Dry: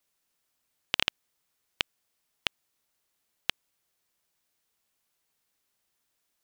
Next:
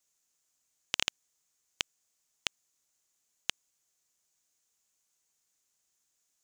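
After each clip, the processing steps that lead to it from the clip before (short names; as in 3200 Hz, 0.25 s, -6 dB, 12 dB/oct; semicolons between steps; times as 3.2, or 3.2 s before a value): bell 6800 Hz +15 dB 0.66 oct; gain -5.5 dB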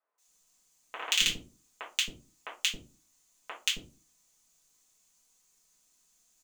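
in parallel at -9 dB: wrapped overs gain 13.5 dB; on the sum: three bands offset in time mids, highs, lows 0.18/0.27 s, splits 430/1600 Hz; reverb RT60 0.30 s, pre-delay 4 ms, DRR -6.5 dB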